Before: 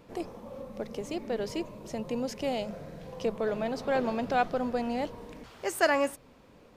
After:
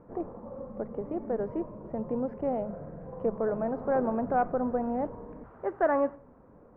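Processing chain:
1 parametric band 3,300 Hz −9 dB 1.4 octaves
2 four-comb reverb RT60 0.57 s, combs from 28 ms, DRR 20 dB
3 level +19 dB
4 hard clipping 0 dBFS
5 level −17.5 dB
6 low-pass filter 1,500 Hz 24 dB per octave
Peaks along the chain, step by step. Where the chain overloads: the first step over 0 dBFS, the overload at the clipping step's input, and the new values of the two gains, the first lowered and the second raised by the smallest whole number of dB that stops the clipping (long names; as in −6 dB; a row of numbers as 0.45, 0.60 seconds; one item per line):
−13.0, −13.0, +6.0, 0.0, −17.5, −16.0 dBFS
step 3, 6.0 dB
step 3 +13 dB, step 5 −11.5 dB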